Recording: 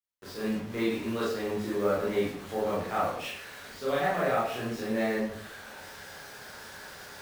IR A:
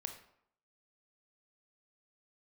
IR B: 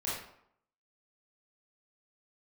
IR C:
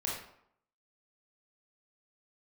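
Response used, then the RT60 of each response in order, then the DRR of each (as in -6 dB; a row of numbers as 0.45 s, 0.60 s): B; 0.70 s, 0.70 s, 0.70 s; 5.5 dB, -8.5 dB, -4.0 dB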